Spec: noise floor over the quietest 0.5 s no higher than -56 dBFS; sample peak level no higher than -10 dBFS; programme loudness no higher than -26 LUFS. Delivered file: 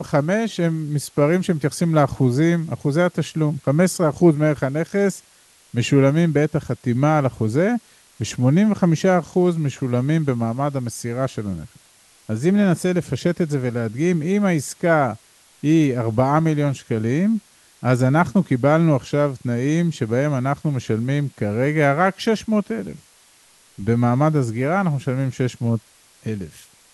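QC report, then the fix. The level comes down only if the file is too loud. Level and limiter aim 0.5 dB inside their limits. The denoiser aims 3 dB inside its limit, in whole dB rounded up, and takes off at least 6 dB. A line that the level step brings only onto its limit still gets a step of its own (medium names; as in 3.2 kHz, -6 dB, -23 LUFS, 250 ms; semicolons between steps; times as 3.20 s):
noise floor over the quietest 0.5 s -53 dBFS: fail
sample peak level -4.5 dBFS: fail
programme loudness -20.0 LUFS: fail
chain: trim -6.5 dB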